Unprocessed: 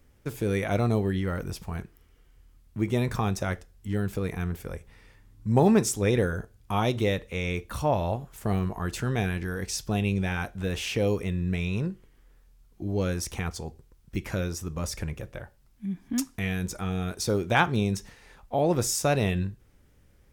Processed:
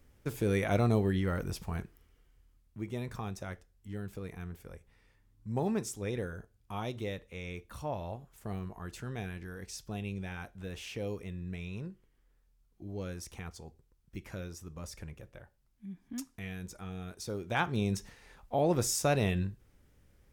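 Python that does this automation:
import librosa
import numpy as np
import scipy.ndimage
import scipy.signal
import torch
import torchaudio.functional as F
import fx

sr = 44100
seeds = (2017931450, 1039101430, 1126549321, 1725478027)

y = fx.gain(x, sr, db=fx.line((1.78, -2.5), (2.84, -12.0), (17.36, -12.0), (17.92, -4.0)))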